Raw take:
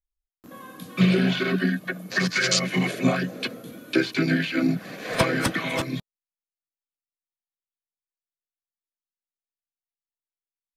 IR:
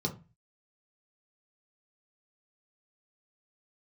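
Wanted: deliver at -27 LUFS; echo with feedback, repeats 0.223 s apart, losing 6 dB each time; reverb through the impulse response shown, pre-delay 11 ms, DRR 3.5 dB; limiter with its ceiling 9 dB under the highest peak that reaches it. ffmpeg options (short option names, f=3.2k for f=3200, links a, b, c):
-filter_complex "[0:a]alimiter=limit=-14.5dB:level=0:latency=1,aecho=1:1:223|446|669|892|1115|1338:0.501|0.251|0.125|0.0626|0.0313|0.0157,asplit=2[a][b];[1:a]atrim=start_sample=2205,adelay=11[c];[b][c]afir=irnorm=-1:irlink=0,volume=-8dB[d];[a][d]amix=inputs=2:normalize=0,volume=-9dB"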